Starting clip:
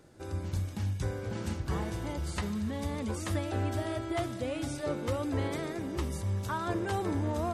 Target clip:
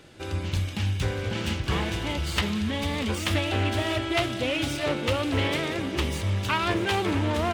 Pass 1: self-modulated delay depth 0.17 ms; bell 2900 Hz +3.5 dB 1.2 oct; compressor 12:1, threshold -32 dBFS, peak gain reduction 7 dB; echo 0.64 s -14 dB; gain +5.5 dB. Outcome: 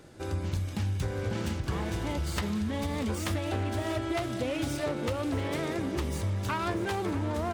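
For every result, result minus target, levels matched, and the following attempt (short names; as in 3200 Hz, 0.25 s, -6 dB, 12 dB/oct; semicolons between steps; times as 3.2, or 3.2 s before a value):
compressor: peak gain reduction +7 dB; 4000 Hz band -6.0 dB
self-modulated delay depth 0.17 ms; bell 2900 Hz +3.5 dB 1.2 oct; echo 0.64 s -14 dB; gain +5.5 dB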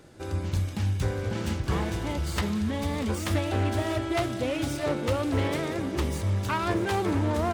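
4000 Hz band -6.5 dB
self-modulated delay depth 0.17 ms; bell 2900 Hz +13.5 dB 1.2 oct; echo 0.64 s -14 dB; gain +5.5 dB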